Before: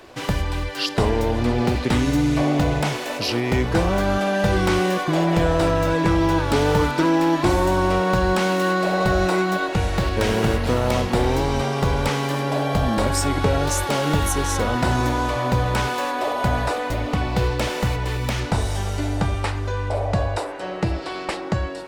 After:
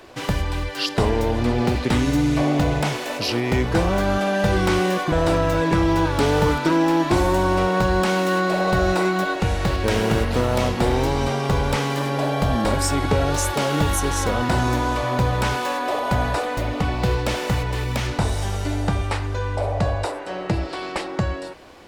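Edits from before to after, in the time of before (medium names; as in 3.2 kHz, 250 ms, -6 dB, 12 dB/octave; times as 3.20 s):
5.12–5.45 s: delete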